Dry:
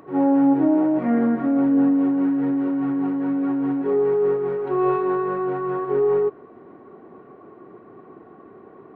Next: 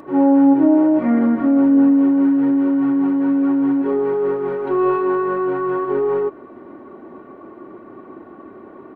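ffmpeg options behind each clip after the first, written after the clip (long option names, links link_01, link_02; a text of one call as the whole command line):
ffmpeg -i in.wav -filter_complex "[0:a]aecho=1:1:3.4:0.46,asplit=2[link_01][link_02];[link_02]acompressor=threshold=-25dB:ratio=6,volume=-1dB[link_03];[link_01][link_03]amix=inputs=2:normalize=0" out.wav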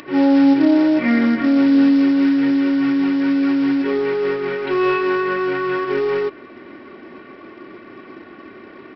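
ffmpeg -i in.wav -af "highshelf=frequency=1500:width_type=q:width=1.5:gain=14,aresample=11025,acrusher=bits=6:mode=log:mix=0:aa=0.000001,aresample=44100" out.wav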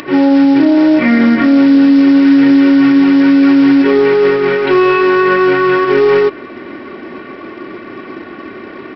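ffmpeg -i in.wav -af "alimiter=level_in=11.5dB:limit=-1dB:release=50:level=0:latency=1,volume=-1dB" out.wav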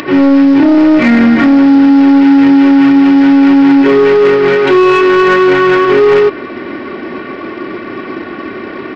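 ffmpeg -i in.wav -af "acontrast=84,volume=-1dB" out.wav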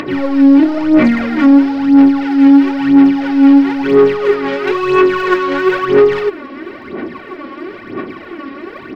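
ffmpeg -i in.wav -af "aphaser=in_gain=1:out_gain=1:delay=3.7:decay=0.66:speed=1:type=sinusoidal,volume=-8.5dB" out.wav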